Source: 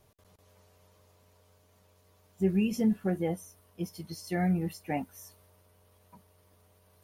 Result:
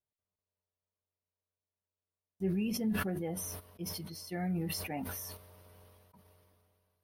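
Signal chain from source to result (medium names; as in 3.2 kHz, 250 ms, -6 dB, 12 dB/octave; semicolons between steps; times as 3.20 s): peaking EQ 7.3 kHz -11.5 dB 0.36 oct; gate -55 dBFS, range -27 dB; decay stretcher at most 25 dB/s; trim -7.5 dB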